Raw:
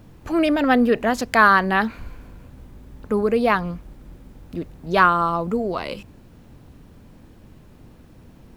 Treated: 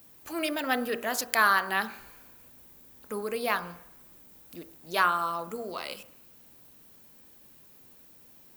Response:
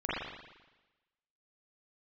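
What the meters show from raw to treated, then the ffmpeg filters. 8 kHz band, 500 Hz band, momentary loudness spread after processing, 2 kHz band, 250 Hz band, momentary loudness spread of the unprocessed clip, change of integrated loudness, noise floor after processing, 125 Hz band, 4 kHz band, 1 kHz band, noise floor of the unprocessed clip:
no reading, -12.0 dB, 23 LU, -7.0 dB, -16.0 dB, 18 LU, -9.5 dB, -55 dBFS, -18.5 dB, -2.5 dB, -9.0 dB, -48 dBFS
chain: -filter_complex "[0:a]aemphasis=mode=production:type=riaa,bandreject=f=46.77:t=h:w=4,bandreject=f=93.54:t=h:w=4,bandreject=f=140.31:t=h:w=4,bandreject=f=187.08:t=h:w=4,bandreject=f=233.85:t=h:w=4,bandreject=f=280.62:t=h:w=4,bandreject=f=327.39:t=h:w=4,bandreject=f=374.16:t=h:w=4,bandreject=f=420.93:t=h:w=4,bandreject=f=467.7:t=h:w=4,bandreject=f=514.47:t=h:w=4,bandreject=f=561.24:t=h:w=4,bandreject=f=608.01:t=h:w=4,bandreject=f=654.78:t=h:w=4,bandreject=f=701.55:t=h:w=4,bandreject=f=748.32:t=h:w=4,bandreject=f=795.09:t=h:w=4,bandreject=f=841.86:t=h:w=4,bandreject=f=888.63:t=h:w=4,bandreject=f=935.4:t=h:w=4,bandreject=f=982.17:t=h:w=4,bandreject=f=1028.94:t=h:w=4,bandreject=f=1075.71:t=h:w=4,bandreject=f=1122.48:t=h:w=4,bandreject=f=1169.25:t=h:w=4,bandreject=f=1216.02:t=h:w=4,bandreject=f=1262.79:t=h:w=4,bandreject=f=1309.56:t=h:w=4,bandreject=f=1356.33:t=h:w=4,bandreject=f=1403.1:t=h:w=4,bandreject=f=1449.87:t=h:w=4,bandreject=f=1496.64:t=h:w=4,bandreject=f=1543.41:t=h:w=4,bandreject=f=1590.18:t=h:w=4,bandreject=f=1636.95:t=h:w=4,asplit=2[s0][s1];[1:a]atrim=start_sample=2205[s2];[s1][s2]afir=irnorm=-1:irlink=0,volume=0.0447[s3];[s0][s3]amix=inputs=2:normalize=0,volume=0.355"

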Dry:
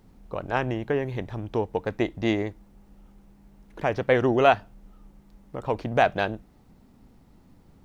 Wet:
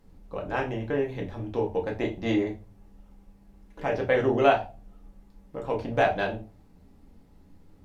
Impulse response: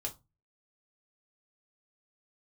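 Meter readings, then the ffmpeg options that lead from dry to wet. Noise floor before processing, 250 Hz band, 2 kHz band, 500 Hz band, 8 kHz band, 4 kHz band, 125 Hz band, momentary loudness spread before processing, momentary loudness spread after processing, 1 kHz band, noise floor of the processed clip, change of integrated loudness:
-56 dBFS, -1.5 dB, -2.0 dB, -1.0 dB, no reading, -3.0 dB, -3.0 dB, 15 LU, 16 LU, -2.5 dB, -56 dBFS, -1.5 dB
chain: -filter_complex "[1:a]atrim=start_sample=2205,asetrate=30429,aresample=44100[s0];[0:a][s0]afir=irnorm=-1:irlink=0,volume=0.562"

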